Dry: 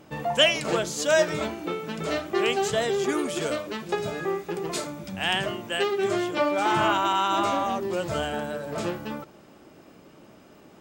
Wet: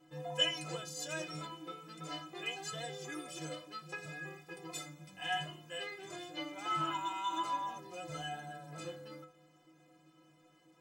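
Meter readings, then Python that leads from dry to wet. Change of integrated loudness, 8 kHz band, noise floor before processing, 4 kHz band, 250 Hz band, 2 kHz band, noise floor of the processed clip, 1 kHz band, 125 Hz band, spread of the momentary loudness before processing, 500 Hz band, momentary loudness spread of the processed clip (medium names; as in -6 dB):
-14.0 dB, -11.5 dB, -52 dBFS, -10.5 dB, -17.0 dB, -14.0 dB, -66 dBFS, -12.5 dB, -11.5 dB, 10 LU, -20.5 dB, 12 LU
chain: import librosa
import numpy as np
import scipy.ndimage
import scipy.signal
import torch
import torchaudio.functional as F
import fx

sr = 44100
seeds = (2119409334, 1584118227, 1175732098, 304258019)

y = fx.low_shelf(x, sr, hz=360.0, db=-4.5)
y = fx.stiff_resonator(y, sr, f0_hz=150.0, decay_s=0.5, stiffness=0.03)
y = F.gain(torch.from_numpy(y), 2.0).numpy()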